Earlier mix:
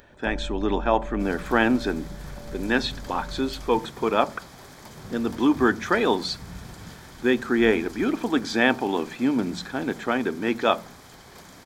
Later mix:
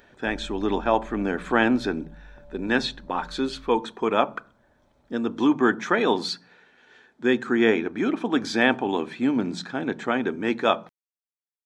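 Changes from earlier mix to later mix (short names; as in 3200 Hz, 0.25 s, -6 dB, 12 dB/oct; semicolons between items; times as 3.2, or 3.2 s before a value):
first sound -7.5 dB; second sound: muted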